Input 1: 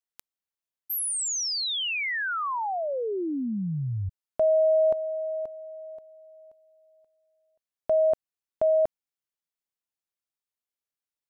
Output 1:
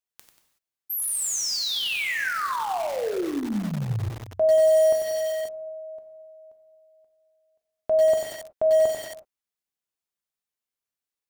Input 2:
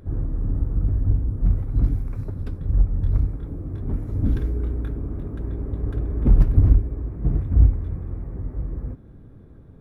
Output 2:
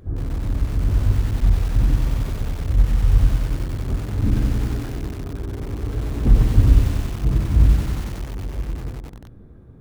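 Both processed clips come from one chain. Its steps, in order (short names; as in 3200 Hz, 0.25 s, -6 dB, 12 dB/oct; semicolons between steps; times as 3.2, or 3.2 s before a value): non-linear reverb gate 0.4 s falling, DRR 4 dB; lo-fi delay 93 ms, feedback 80%, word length 5-bit, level -8 dB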